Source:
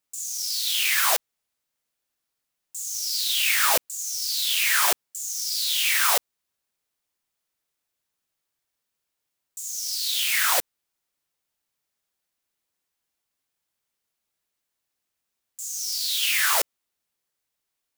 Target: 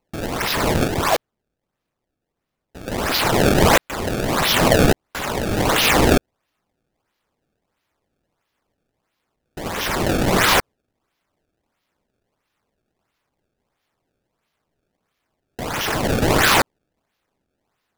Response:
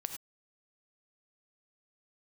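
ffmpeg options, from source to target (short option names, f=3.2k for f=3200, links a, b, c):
-filter_complex "[0:a]asettb=1/sr,asplit=3[a][b][c];[a]atrim=end=0.874[d];[b]atrim=start=0.87:end=2.88,asetpts=PTS-STARTPTS,afade=t=in:d=0.004:c=qsin,afade=t=out:st=2.006:d=0.004:c=qsin,tiltshelf=f=970:g=9.5[e];[c]atrim=start=2.876[f];[d][e]acrossfade=d=0.004:c1=hsin:c2=qsin[g];[g][f]acrossfade=d=0.004:c1=qsin:c2=hsin,acrusher=samples=25:mix=1:aa=0.000001:lfo=1:lforange=40:lforate=1.5,volume=6.5dB"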